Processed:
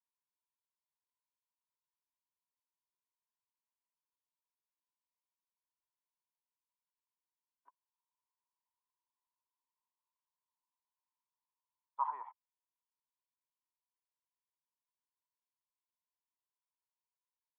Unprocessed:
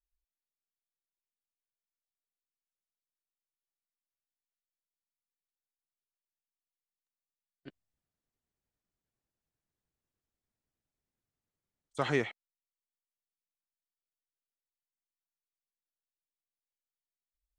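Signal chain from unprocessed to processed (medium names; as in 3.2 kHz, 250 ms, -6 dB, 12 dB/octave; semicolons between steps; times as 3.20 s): Butterworth band-pass 980 Hz, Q 7.4; trim +11.5 dB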